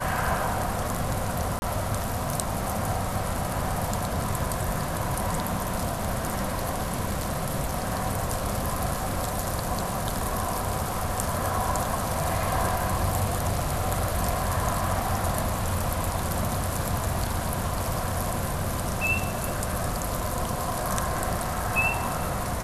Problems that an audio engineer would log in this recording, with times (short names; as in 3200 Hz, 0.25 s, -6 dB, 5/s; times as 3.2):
1.59–1.62 gap 30 ms